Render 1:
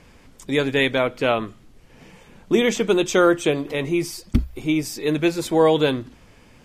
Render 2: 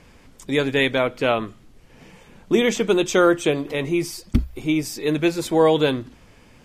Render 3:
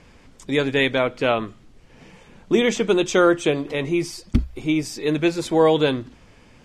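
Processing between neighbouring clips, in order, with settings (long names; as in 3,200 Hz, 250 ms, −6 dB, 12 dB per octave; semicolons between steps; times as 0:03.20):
no processing that can be heard
low-pass filter 8,600 Hz 12 dB per octave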